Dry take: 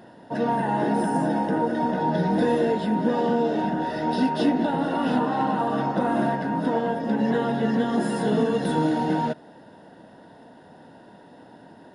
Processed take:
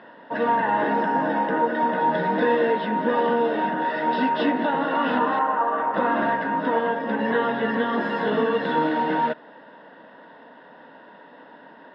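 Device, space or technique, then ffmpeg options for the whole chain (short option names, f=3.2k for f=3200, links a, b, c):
phone earpiece: -filter_complex "[0:a]asettb=1/sr,asplit=3[a][b][c];[a]atrim=end=5.394[d];[b]atrim=start=5.39:end=5.94,asetpts=PTS-STARTPTS,afade=t=in:d=0.004:c=qsin,afade=t=out:st=0.546:d=0.004:c=qsin,acrossover=split=350 2100:gain=0.224 1 0.141[e][f][g];[e][f][g]amix=inputs=3:normalize=0[h];[c]atrim=start=5.936[i];[d][h]acrossfade=d=0.004:c1=hsin:c2=qsin[j];[j][i]acrossfade=d=0.004:c1=qsin:c2=hsin,highpass=350,equalizer=f=360:t=q:w=4:g=-7,equalizer=f=740:t=q:w=4:g=-7,equalizer=f=1.1k:t=q:w=4:g=5,equalizer=f=1.8k:t=q:w=4:g=4,lowpass=f=3.4k:w=0.5412,lowpass=f=3.4k:w=1.3066,volume=5dB"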